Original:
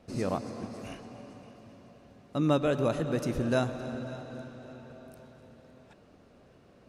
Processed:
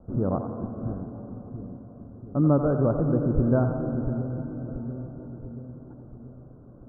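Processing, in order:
Butterworth low-pass 1,500 Hz 96 dB per octave
spectral tilt −3 dB per octave
on a send: echo with a time of its own for lows and highs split 410 Hz, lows 686 ms, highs 88 ms, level −8 dB

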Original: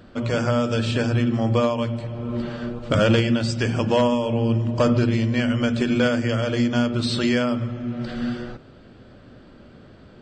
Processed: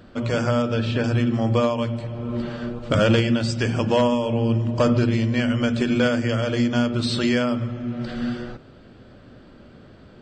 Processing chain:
0:00.62–0:01.04: high-frequency loss of the air 130 metres

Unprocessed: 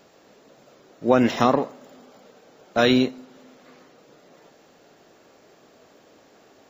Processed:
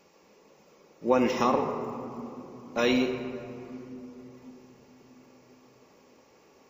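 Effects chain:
EQ curve with evenly spaced ripples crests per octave 0.8, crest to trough 8 dB
convolution reverb RT60 3.2 s, pre-delay 4 ms, DRR 4 dB
level −7 dB

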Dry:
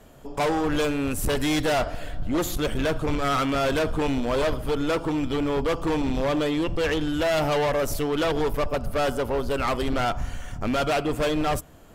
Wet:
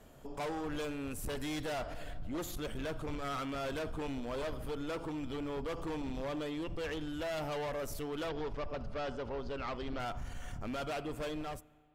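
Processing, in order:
fade-out on the ending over 1.46 s
on a send at −23.5 dB: convolution reverb RT60 2.3 s, pre-delay 33 ms
on the sum: brickwall limiter −27 dBFS, peak gain reduction 8 dB
0:08.29–0:10.00: low-pass filter 5,700 Hz 24 dB per octave
level −7 dB

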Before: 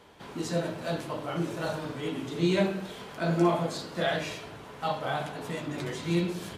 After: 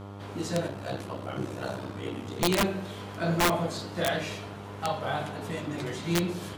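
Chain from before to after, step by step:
0:00.67–0:02.42: ring modulation 32 Hz
wrap-around overflow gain 17 dB
hum with harmonics 100 Hz, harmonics 14, −42 dBFS −5 dB per octave

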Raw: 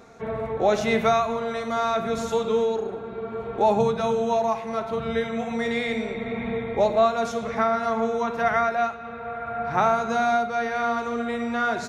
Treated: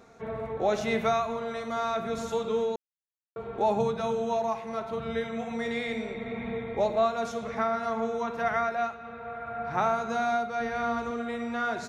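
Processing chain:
0:02.76–0:03.36: silence
0:10.60–0:11.11: low-shelf EQ 170 Hz +11.5 dB
level −5.5 dB

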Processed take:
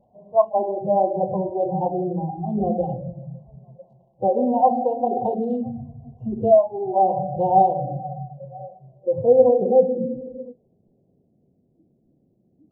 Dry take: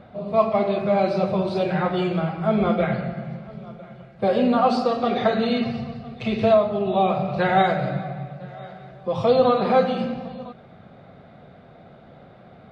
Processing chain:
adaptive Wiener filter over 25 samples
surface crackle 60 per second −30 dBFS
brick-wall band-stop 1,100–2,700 Hz
in parallel at −0.5 dB: downward compressor 5 to 1, threshold −33 dBFS, peak gain reduction 18 dB
on the sum: low-pass filter sweep 800 Hz → 320 Hz, 0:07.96–0:11.68
noise reduction from a noise print of the clip's start 19 dB
level −4 dB

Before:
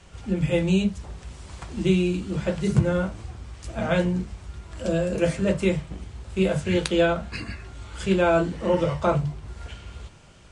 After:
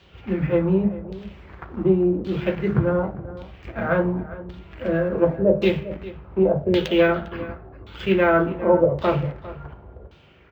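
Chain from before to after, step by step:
phase distortion by the signal itself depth 0.12 ms
in parallel at −9.5 dB: bit reduction 5 bits
on the sum: parametric band 380 Hz +6 dB 0.7 octaves
convolution reverb RT60 0.90 s, pre-delay 3 ms, DRR 15 dB
auto-filter low-pass saw down 0.89 Hz 510–3,900 Hz
high-pass filter 50 Hz
slap from a distant wall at 69 metres, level −16 dB
linearly interpolated sample-rate reduction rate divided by 2×
level −3.5 dB

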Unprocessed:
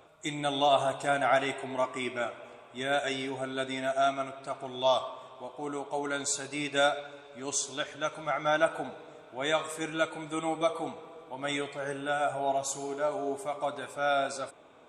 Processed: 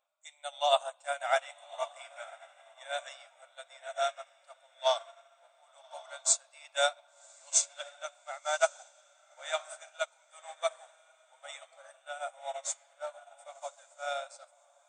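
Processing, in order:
linear-phase brick-wall band-pass 510–9,300 Hz
high-shelf EQ 4,700 Hz +11 dB
feedback delay with all-pass diffusion 1,111 ms, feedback 47%, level −7 dB
expander for the loud parts 2.5 to 1, over −37 dBFS

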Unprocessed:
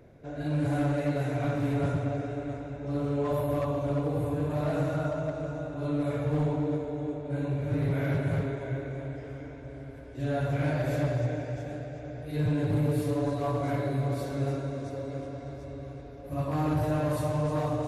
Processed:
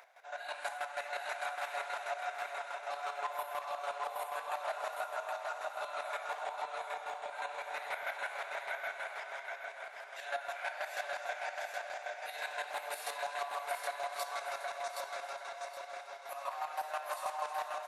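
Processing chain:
elliptic high-pass filter 740 Hz, stop band 70 dB
downward compressor, threshold −43 dBFS, peak gain reduction 11 dB
square-wave tremolo 6.2 Hz, depth 65%, duty 25%
on a send: repeating echo 770 ms, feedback 29%, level −3.5 dB
on the sum: level +10.5 dB

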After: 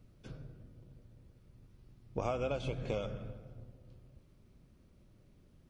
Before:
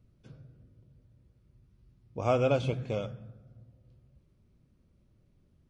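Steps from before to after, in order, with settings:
sub-octave generator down 2 octaves, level −2 dB
low-shelf EQ 400 Hz −3 dB
feedback echo with a low-pass in the loop 164 ms, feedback 44%, low-pass 4,900 Hz, level −22 dB
downward compressor 12 to 1, threshold −37 dBFS, peak gain reduction 16 dB
low-shelf EQ 150 Hz −3.5 dB
level +6.5 dB

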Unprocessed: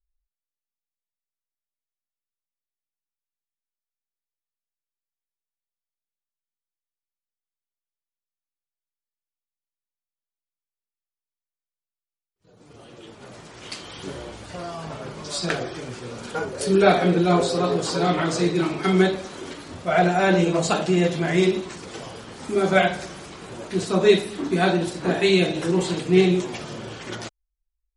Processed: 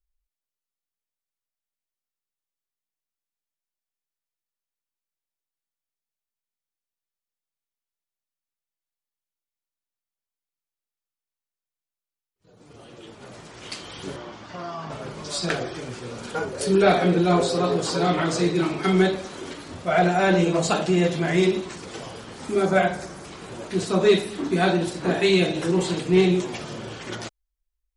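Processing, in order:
0:22.65–0:23.25: parametric band 3,100 Hz −8 dB 1.1 octaves
soft clipping −7 dBFS, distortion −23 dB
0:14.16–0:14.90: loudspeaker in its box 140–5,700 Hz, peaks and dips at 480 Hz −7 dB, 1,100 Hz +5 dB, 2,500 Hz −3 dB, 4,100 Hz −5 dB

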